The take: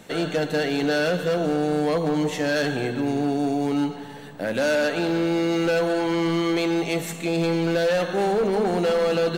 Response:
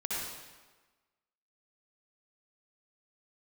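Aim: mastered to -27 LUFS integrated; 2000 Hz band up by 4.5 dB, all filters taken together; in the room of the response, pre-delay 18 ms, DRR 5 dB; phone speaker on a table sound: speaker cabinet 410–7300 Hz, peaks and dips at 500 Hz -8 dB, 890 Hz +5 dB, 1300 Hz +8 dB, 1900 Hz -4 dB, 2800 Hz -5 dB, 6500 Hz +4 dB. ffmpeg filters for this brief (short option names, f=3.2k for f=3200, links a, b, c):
-filter_complex "[0:a]equalizer=f=2k:t=o:g=5.5,asplit=2[a][b];[1:a]atrim=start_sample=2205,adelay=18[c];[b][c]afir=irnorm=-1:irlink=0,volume=-10dB[d];[a][d]amix=inputs=2:normalize=0,highpass=f=410:w=0.5412,highpass=f=410:w=1.3066,equalizer=f=500:t=q:w=4:g=-8,equalizer=f=890:t=q:w=4:g=5,equalizer=f=1.3k:t=q:w=4:g=8,equalizer=f=1.9k:t=q:w=4:g=-4,equalizer=f=2.8k:t=q:w=4:g=-5,equalizer=f=6.5k:t=q:w=4:g=4,lowpass=f=7.3k:w=0.5412,lowpass=f=7.3k:w=1.3066,volume=-3dB"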